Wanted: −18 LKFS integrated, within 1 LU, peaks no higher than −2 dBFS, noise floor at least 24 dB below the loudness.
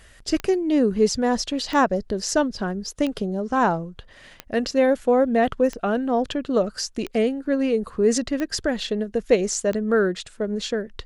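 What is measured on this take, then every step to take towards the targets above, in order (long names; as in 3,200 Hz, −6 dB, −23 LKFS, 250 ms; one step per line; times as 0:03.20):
number of clicks 8; integrated loudness −23.0 LKFS; sample peak −5.5 dBFS; target loudness −18.0 LKFS
→ click removal
level +5 dB
brickwall limiter −2 dBFS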